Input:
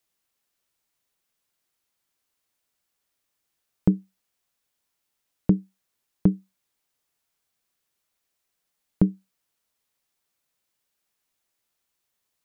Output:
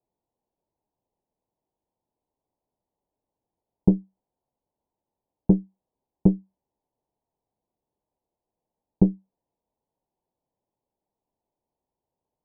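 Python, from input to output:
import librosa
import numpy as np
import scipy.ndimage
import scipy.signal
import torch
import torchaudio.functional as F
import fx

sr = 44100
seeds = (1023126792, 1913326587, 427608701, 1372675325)

y = fx.diode_clip(x, sr, knee_db=-17.0)
y = scipy.signal.sosfilt(scipy.signal.ellip(4, 1.0, 40, 930.0, 'lowpass', fs=sr, output='sos'), y)
y = y * 10.0 ** (5.0 / 20.0)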